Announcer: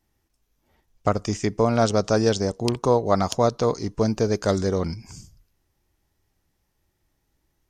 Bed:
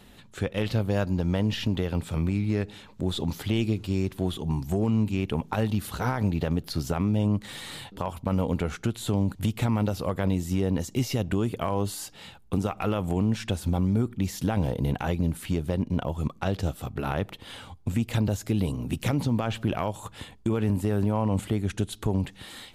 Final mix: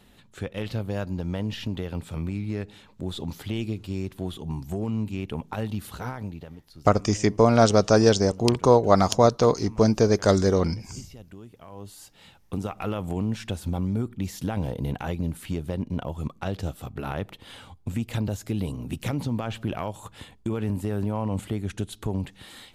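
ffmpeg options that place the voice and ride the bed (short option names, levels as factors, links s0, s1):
-filter_complex "[0:a]adelay=5800,volume=1.33[s0];[1:a]volume=3.98,afade=t=out:st=5.9:d=0.64:silence=0.188365,afade=t=in:st=11.65:d=1.12:silence=0.158489[s1];[s0][s1]amix=inputs=2:normalize=0"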